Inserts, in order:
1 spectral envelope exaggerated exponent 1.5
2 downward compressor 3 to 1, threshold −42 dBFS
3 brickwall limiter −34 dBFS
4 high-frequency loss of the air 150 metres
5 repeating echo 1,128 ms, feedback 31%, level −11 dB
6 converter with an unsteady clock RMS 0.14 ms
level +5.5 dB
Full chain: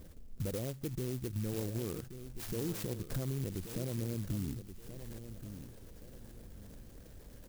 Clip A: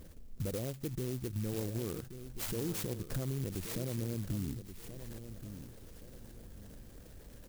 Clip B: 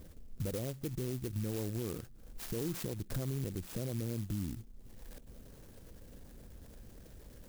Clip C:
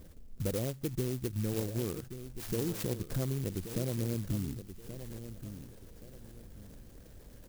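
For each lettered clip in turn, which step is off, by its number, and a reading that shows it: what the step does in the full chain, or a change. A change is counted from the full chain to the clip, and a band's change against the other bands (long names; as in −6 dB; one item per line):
4, 125 Hz band −1.5 dB
5, change in momentary loudness spread +2 LU
3, change in crest factor +2.0 dB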